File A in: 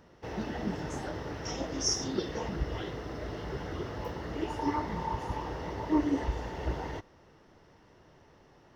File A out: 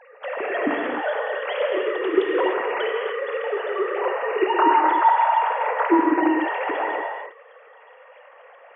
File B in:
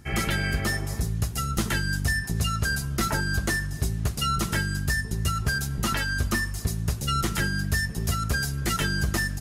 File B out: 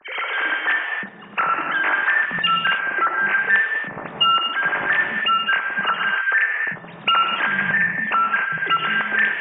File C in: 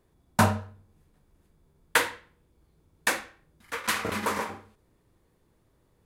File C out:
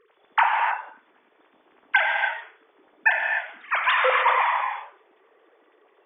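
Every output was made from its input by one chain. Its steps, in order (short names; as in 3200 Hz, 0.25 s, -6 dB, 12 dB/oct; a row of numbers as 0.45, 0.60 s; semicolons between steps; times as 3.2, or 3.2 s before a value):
sine-wave speech; low shelf 390 Hz -10.5 dB; compressor 3:1, threshold -31 dBFS; non-linear reverb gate 0.33 s flat, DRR 0.5 dB; normalise peaks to -6 dBFS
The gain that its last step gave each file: +16.0, +10.5, +11.5 dB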